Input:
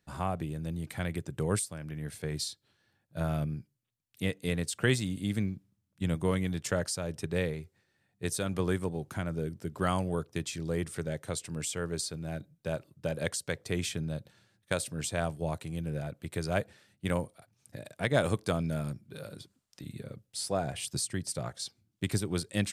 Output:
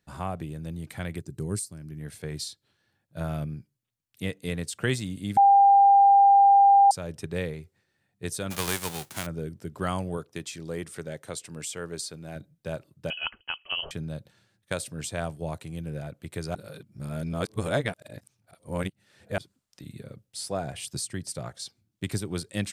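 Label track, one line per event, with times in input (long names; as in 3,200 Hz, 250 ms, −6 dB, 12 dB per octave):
1.210000	2.000000	gain on a spectral selection 410–3,900 Hz −10 dB
5.370000	6.910000	beep over 797 Hz −13 dBFS
8.500000	9.250000	spectral envelope flattened exponent 0.3
10.170000	12.360000	low-shelf EQ 110 Hz −12 dB
13.100000	13.910000	voice inversion scrambler carrier 3,100 Hz
16.550000	19.380000	reverse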